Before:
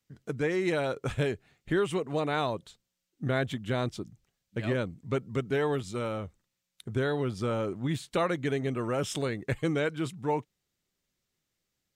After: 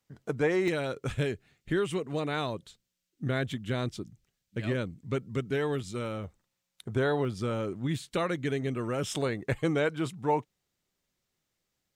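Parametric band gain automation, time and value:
parametric band 800 Hz 1.4 octaves
+7 dB
from 0:00.68 −5 dB
from 0:06.24 +5 dB
from 0:07.25 −4 dB
from 0:09.07 +3.5 dB

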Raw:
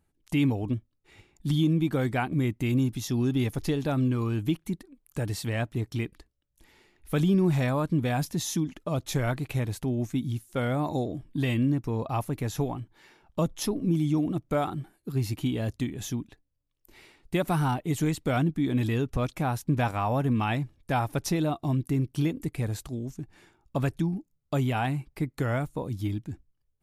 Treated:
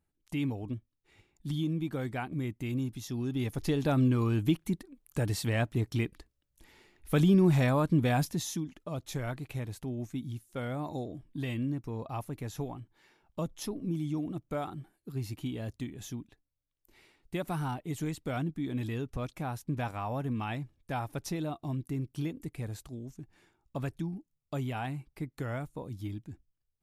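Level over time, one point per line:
0:03.25 −8 dB
0:03.86 0 dB
0:08.18 0 dB
0:08.65 −8 dB

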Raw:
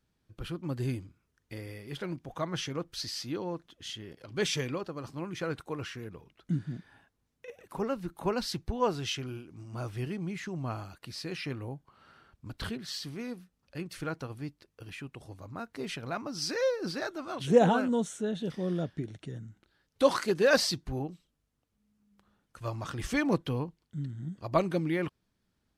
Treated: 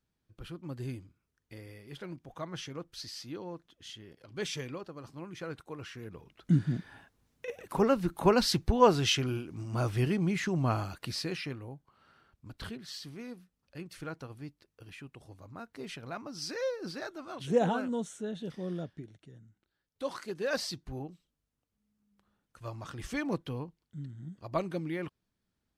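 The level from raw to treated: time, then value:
0:05.80 −6 dB
0:06.58 +6.5 dB
0:11.10 +6.5 dB
0:11.62 −5 dB
0:18.76 −5 dB
0:19.23 −12.5 dB
0:20.02 −12.5 dB
0:20.92 −5.5 dB

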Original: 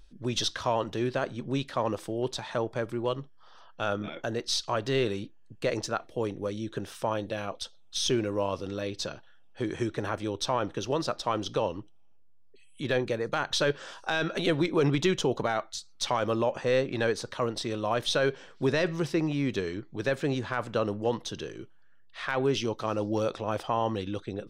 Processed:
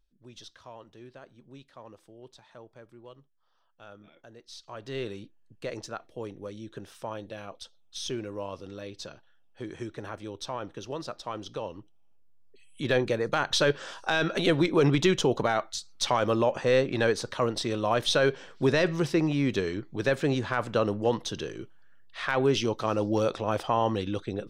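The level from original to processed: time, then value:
0:04.47 −19 dB
0:05.00 −7 dB
0:11.65 −7 dB
0:12.92 +2.5 dB

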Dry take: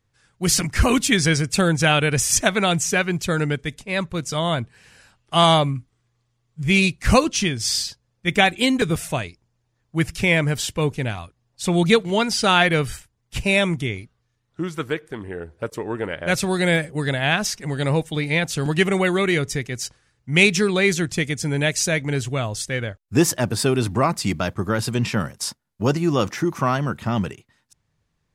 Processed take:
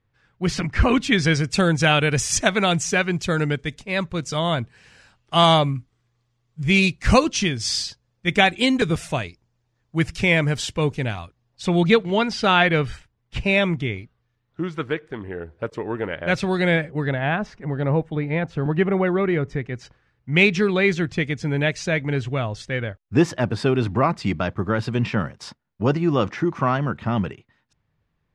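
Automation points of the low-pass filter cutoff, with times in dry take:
0:00.90 3,000 Hz
0:01.62 6,600 Hz
0:11.17 6,600 Hz
0:11.94 3,600 Hz
0:16.61 3,600 Hz
0:17.40 1,400 Hz
0:19.36 1,400 Hz
0:20.30 3,100 Hz

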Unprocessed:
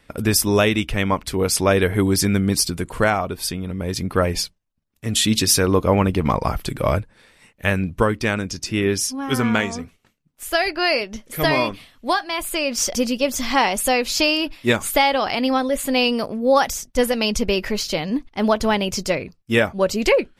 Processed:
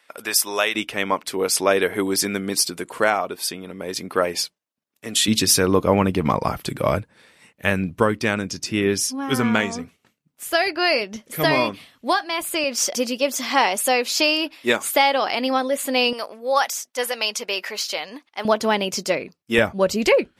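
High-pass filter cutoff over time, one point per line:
710 Hz
from 0:00.75 320 Hz
from 0:05.28 120 Hz
from 0:12.64 300 Hz
from 0:16.13 700 Hz
from 0:18.45 230 Hz
from 0:19.58 72 Hz

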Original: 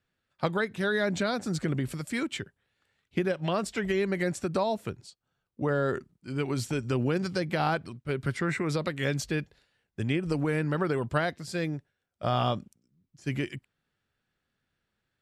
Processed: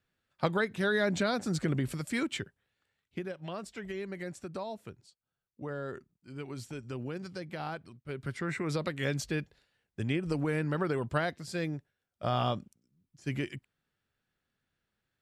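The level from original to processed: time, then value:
0:02.42 −1 dB
0:03.30 −11 dB
0:07.82 −11 dB
0:08.76 −3 dB

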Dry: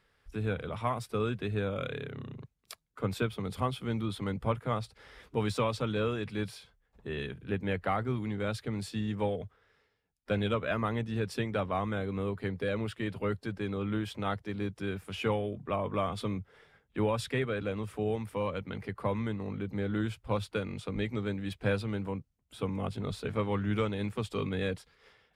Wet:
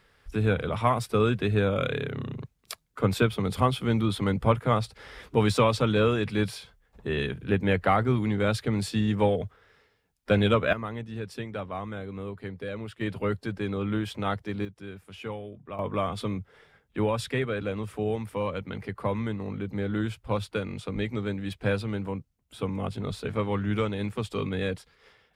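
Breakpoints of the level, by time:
+8 dB
from 0:10.73 −3 dB
from 0:13.01 +4 dB
from 0:14.65 −6 dB
from 0:15.79 +3 dB

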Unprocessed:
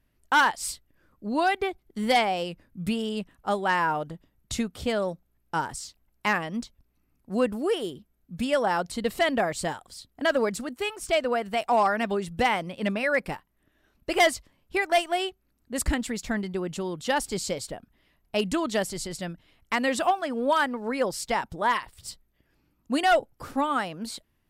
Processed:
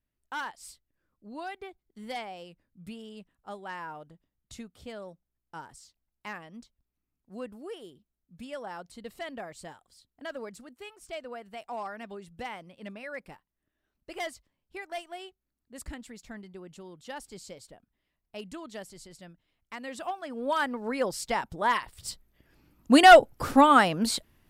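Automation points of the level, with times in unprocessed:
0:19.81 −15 dB
0:20.72 −2.5 dB
0:21.55 −2.5 dB
0:22.91 +8 dB

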